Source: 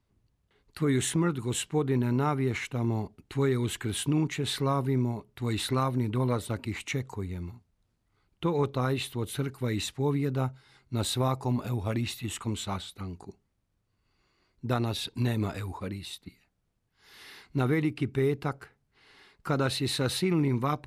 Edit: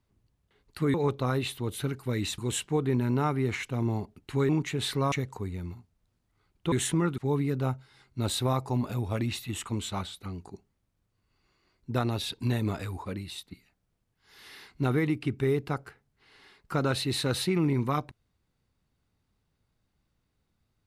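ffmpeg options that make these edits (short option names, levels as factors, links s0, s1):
-filter_complex "[0:a]asplit=7[s0][s1][s2][s3][s4][s5][s6];[s0]atrim=end=0.942[s7];[s1]atrim=start=8.488:end=9.932[s8];[s2]atrim=start=1.398:end=3.512[s9];[s3]atrim=start=4.138:end=4.772[s10];[s4]atrim=start=6.888:end=8.492[s11];[s5]atrim=start=0.938:end=1.402[s12];[s6]atrim=start=9.928[s13];[s7][s8]acrossfade=d=0.004:c1=hsin:c2=hsin[s14];[s14][s9]acrossfade=d=0.004:c1=hsin:c2=hsin[s15];[s15][s10]acrossfade=d=0.004:c1=hsin:c2=hsin[s16];[s16][s11]acrossfade=d=0.004:c1=hsin:c2=hsin[s17];[s17][s12]acrossfade=d=0.004:c1=hsin:c2=hsin[s18];[s18][s13]acrossfade=d=0.004:c1=hsin:c2=hsin"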